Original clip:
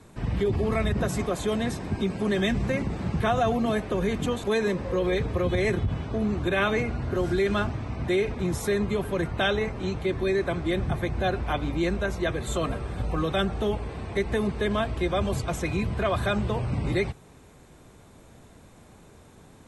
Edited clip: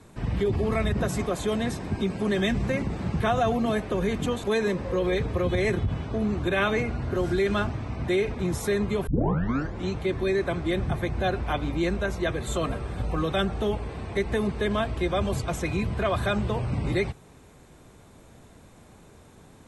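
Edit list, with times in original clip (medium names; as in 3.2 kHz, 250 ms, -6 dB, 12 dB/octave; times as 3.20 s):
9.07 s: tape start 0.79 s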